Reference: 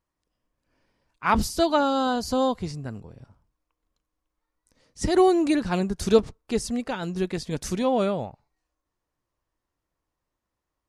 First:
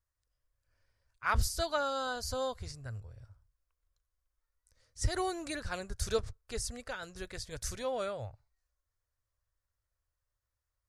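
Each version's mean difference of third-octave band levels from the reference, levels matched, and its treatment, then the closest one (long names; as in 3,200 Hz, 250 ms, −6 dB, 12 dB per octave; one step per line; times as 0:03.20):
5.5 dB: drawn EQ curve 110 Hz 0 dB, 170 Hz −23 dB, 340 Hz −20 dB, 550 Hz −9 dB, 860 Hz −15 dB, 1,500 Hz −4 dB, 2,800 Hz −11 dB, 4,600 Hz −5 dB, 8,300 Hz −3 dB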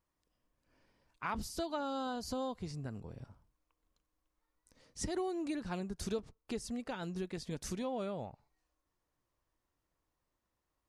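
3.5 dB: downward compressor 3 to 1, threshold −38 dBFS, peak gain reduction 19 dB
level −2 dB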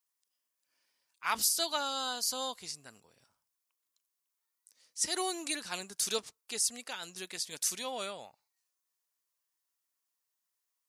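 10.0 dB: first difference
level +5.5 dB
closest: second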